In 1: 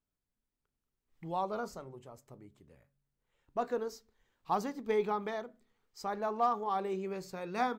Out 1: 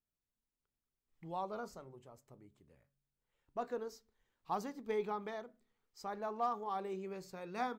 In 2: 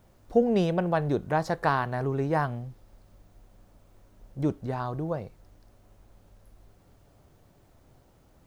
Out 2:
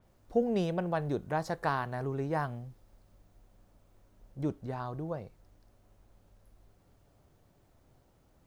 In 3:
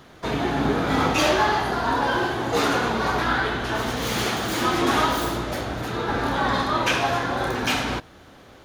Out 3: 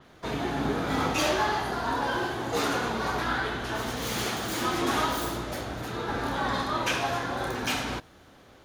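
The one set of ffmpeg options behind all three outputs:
-af "adynamicequalizer=threshold=0.01:dfrequency=5300:dqfactor=0.7:tfrequency=5300:tqfactor=0.7:attack=5:release=100:ratio=0.375:range=2:mode=boostabove:tftype=highshelf,volume=-6dB"

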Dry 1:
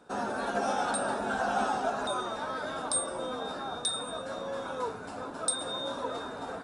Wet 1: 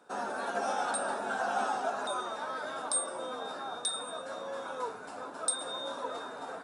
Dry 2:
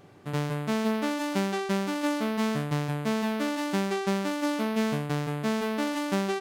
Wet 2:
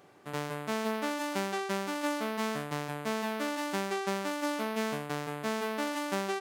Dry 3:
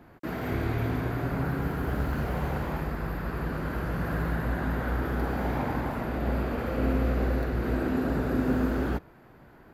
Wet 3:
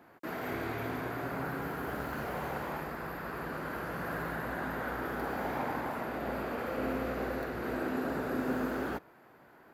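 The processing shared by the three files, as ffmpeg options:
-af "highpass=f=540:p=1,equalizer=f=3.6k:t=o:w=1.8:g=-3"

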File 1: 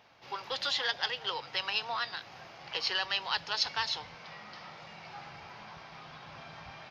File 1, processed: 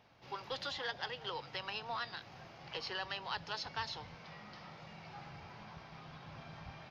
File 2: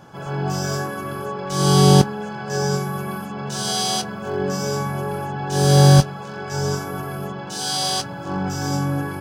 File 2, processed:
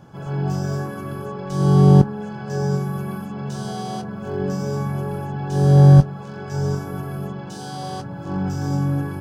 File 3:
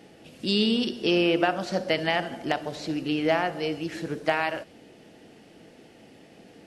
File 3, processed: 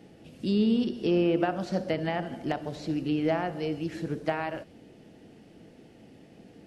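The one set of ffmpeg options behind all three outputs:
-filter_complex "[0:a]acrossover=split=1800[a][b];[b]acompressor=threshold=-35dB:ratio=6[c];[a][c]amix=inputs=2:normalize=0,lowshelf=f=350:g=10.5,volume=-6.5dB"

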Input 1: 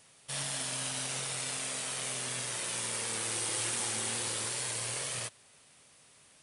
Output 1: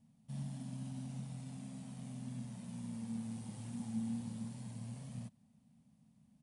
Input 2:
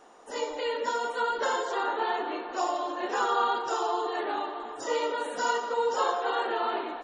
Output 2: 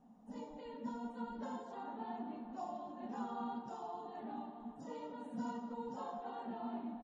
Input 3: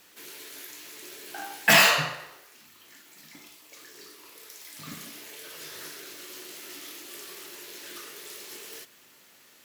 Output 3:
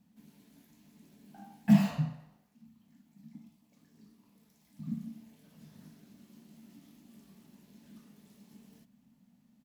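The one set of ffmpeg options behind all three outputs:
-af "firequalizer=gain_entry='entry(110,0);entry(220,14);entry(340,-21);entry(490,-20);entry(740,-13);entry(1300,-26)':delay=0.05:min_phase=1"

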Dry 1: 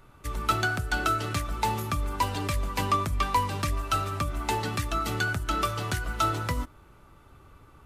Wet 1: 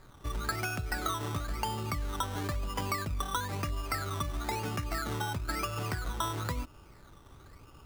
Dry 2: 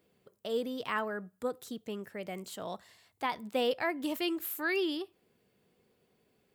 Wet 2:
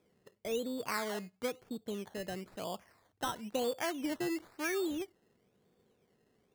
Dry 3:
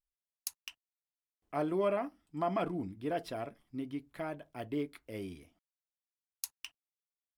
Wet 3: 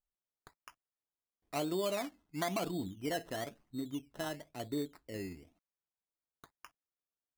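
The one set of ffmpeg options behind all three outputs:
-af "lowpass=1.9k,acompressor=threshold=-31dB:ratio=4,acrusher=samples=15:mix=1:aa=0.000001:lfo=1:lforange=9:lforate=1"

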